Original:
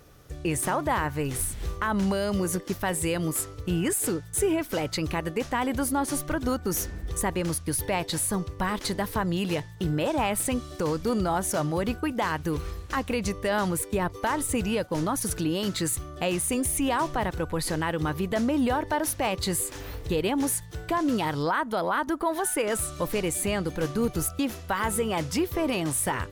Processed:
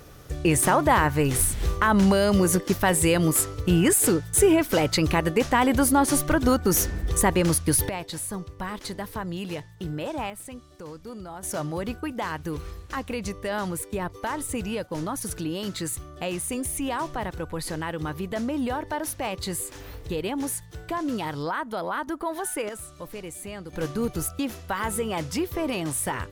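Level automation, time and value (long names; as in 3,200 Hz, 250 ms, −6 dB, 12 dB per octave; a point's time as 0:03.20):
+6.5 dB
from 0:07.89 −5 dB
from 0:10.30 −13 dB
from 0:11.43 −3 dB
from 0:22.69 −10 dB
from 0:23.73 −1 dB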